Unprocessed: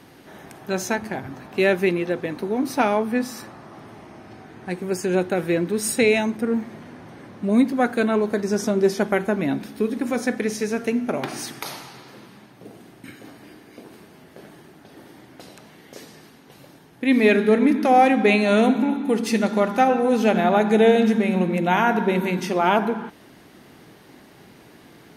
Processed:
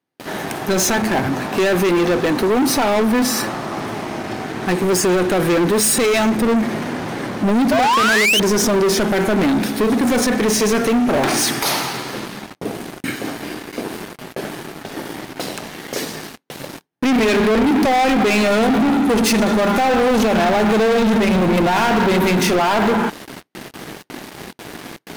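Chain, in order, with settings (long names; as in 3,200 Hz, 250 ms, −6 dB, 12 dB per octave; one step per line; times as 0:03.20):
noise gate with hold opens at −38 dBFS
high-pass filter 150 Hz 6 dB per octave
brickwall limiter −16.5 dBFS, peak gain reduction 11.5 dB
sound drawn into the spectrogram rise, 0:07.71–0:08.40, 580–3,200 Hz −23 dBFS
leveller curve on the samples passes 5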